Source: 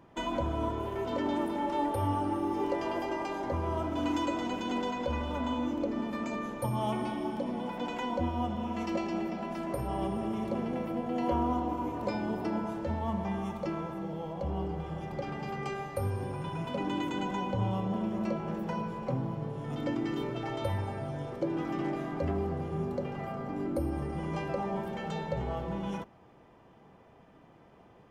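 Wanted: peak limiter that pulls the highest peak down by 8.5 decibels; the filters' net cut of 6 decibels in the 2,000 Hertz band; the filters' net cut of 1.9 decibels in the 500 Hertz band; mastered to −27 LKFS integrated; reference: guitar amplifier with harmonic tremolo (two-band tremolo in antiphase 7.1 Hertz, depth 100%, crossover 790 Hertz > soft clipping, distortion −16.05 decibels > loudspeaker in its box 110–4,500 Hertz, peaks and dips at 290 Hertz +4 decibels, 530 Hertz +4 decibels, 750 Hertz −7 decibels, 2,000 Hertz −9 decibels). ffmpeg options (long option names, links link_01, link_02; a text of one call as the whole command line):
ffmpeg -i in.wav -filter_complex "[0:a]equalizer=frequency=500:width_type=o:gain=-4,equalizer=frequency=2000:width_type=o:gain=-3,alimiter=level_in=4dB:limit=-24dB:level=0:latency=1,volume=-4dB,acrossover=split=790[link_01][link_02];[link_01]aeval=exprs='val(0)*(1-1/2+1/2*cos(2*PI*7.1*n/s))':channel_layout=same[link_03];[link_02]aeval=exprs='val(0)*(1-1/2-1/2*cos(2*PI*7.1*n/s))':channel_layout=same[link_04];[link_03][link_04]amix=inputs=2:normalize=0,asoftclip=threshold=-34.5dB,highpass=110,equalizer=frequency=290:width_type=q:width=4:gain=4,equalizer=frequency=530:width_type=q:width=4:gain=4,equalizer=frequency=750:width_type=q:width=4:gain=-7,equalizer=frequency=2000:width_type=q:width=4:gain=-9,lowpass=frequency=4500:width=0.5412,lowpass=frequency=4500:width=1.3066,volume=16.5dB" out.wav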